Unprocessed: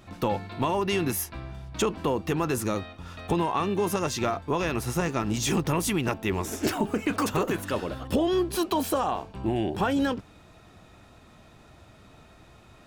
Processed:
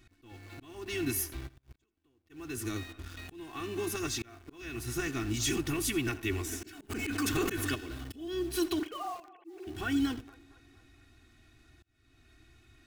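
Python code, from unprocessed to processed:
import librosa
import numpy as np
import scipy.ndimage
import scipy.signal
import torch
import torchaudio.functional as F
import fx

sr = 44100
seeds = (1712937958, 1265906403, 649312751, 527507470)

p1 = fx.sine_speech(x, sr, at=(8.79, 9.67))
p2 = fx.band_shelf(p1, sr, hz=690.0, db=-12.5, octaves=1.7)
p3 = p2 + 0.94 * np.pad(p2, (int(2.7 * sr / 1000.0), 0))[:len(p2)]
p4 = fx.echo_wet_bandpass(p3, sr, ms=231, feedback_pct=52, hz=790.0, wet_db=-15)
p5 = fx.quant_dither(p4, sr, seeds[0], bits=6, dither='none')
p6 = p4 + (p5 * librosa.db_to_amplitude(-5.5))
p7 = fx.gate_flip(p6, sr, shuts_db=-25.0, range_db=-35, at=(1.47, 2.29), fade=0.02)
p8 = p7 + fx.echo_single(p7, sr, ms=84, db=-18.5, dry=0)
p9 = fx.auto_swell(p8, sr, attack_ms=498.0)
p10 = fx.env_flatten(p9, sr, amount_pct=70, at=(6.89, 7.74), fade=0.02)
y = p10 * librosa.db_to_amplitude(-9.0)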